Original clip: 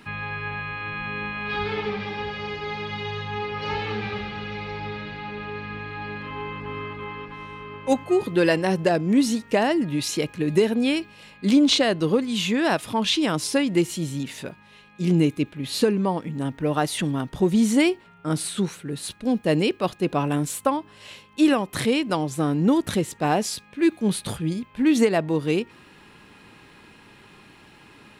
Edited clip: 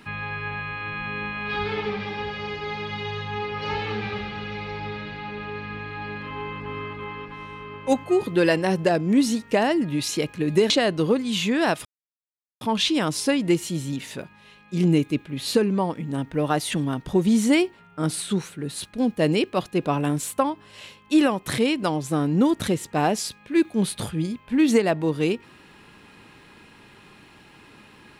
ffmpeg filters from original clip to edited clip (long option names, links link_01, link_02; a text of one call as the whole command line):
ffmpeg -i in.wav -filter_complex "[0:a]asplit=3[link_01][link_02][link_03];[link_01]atrim=end=10.702[link_04];[link_02]atrim=start=11.728:end=12.88,asetpts=PTS-STARTPTS,afade=type=out:start_time=1.148:duration=0.004:curve=hsin,apad=pad_dur=0.76[link_05];[link_03]atrim=start=12.88,asetpts=PTS-STARTPTS,afade=type=in:duration=0.004:curve=hsin[link_06];[link_05][link_06]concat=n=2:v=0:a=1[link_07];[link_04][link_07]acrossfade=duration=0.004:curve1=hsin:curve2=hsin" out.wav